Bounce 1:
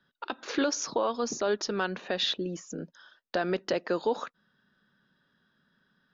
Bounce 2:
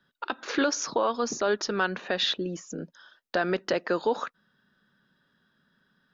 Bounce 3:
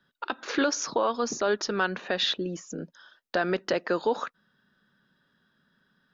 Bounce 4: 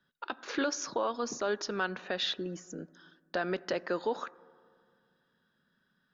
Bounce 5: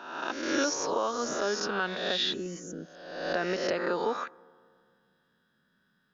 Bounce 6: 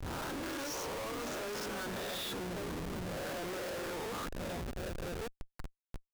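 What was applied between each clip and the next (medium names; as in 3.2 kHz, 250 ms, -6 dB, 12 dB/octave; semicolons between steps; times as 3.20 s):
dynamic bell 1.5 kHz, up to +4 dB, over -46 dBFS, Q 1.2; trim +1.5 dB
no audible change
reverberation RT60 2.2 s, pre-delay 4 ms, DRR 19.5 dB; trim -6 dB
reverse spectral sustain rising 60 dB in 1.03 s
repeats whose band climbs or falls 575 ms, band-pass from 200 Hz, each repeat 1.4 oct, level -5.5 dB; Schmitt trigger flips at -37.5 dBFS; trim -6.5 dB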